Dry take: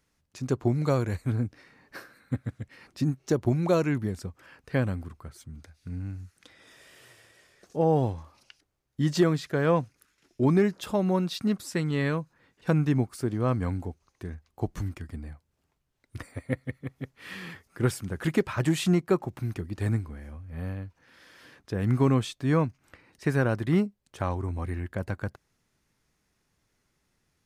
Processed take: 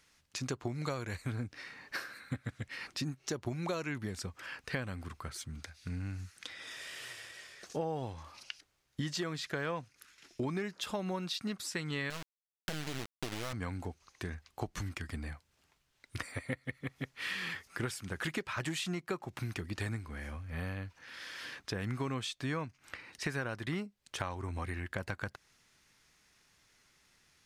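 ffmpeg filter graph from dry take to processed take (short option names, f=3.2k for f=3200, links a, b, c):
-filter_complex "[0:a]asettb=1/sr,asplit=3[a][b][c];[a]atrim=end=12.104[d];[b]atrim=start=12.1:end=13.53,asetpts=PTS-STARTPTS,afade=t=in:d=0.004:c=qsin,afade=t=out:st=1.426:d=0.004:c=qsin,tiltshelf=f=940:g=4.5,acompressor=threshold=-25dB:ratio=3:attack=3.2:release=140:knee=1:detection=peak,acrusher=bits=3:dc=4:mix=0:aa=0.000001[e];[c]atrim=start=13.526[f];[d][e]acrossfade=d=0.004:c1=hsin:c2=qsin[g];[g][f]acrossfade=d=0.004:c1=qsin:c2=hsin,tiltshelf=f=1.1k:g=-7.5,acompressor=threshold=-40dB:ratio=6,highshelf=f=8.6k:g=-12,volume=6dB"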